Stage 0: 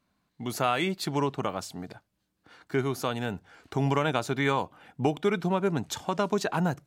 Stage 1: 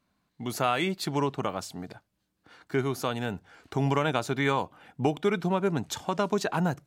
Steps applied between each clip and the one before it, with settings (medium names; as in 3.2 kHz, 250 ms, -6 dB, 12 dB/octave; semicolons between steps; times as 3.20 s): no audible change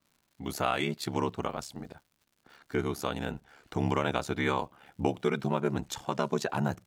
ring modulator 35 Hz; crackle 130 per s -53 dBFS